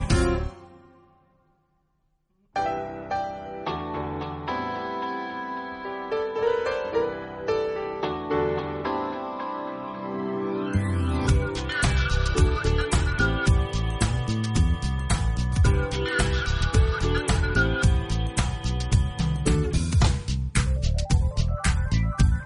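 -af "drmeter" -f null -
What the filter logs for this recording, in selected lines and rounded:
Channel 1: DR: 10.9
Overall DR: 10.9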